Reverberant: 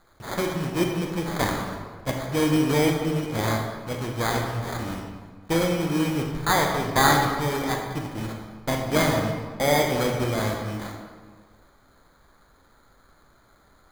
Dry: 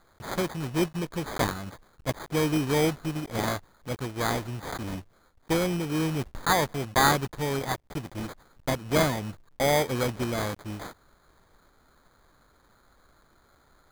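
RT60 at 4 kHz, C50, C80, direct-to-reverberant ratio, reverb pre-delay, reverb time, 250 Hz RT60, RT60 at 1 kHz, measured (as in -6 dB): 1.1 s, 3.5 dB, 5.0 dB, 1.0 dB, 21 ms, 1.6 s, 1.6 s, 1.6 s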